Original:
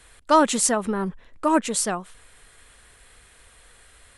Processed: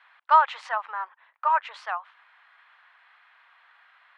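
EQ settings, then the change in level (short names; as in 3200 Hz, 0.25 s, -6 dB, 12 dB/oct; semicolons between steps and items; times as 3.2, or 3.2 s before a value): steep high-pass 840 Hz 36 dB/oct; air absorption 340 m; tape spacing loss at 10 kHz 22 dB; +6.5 dB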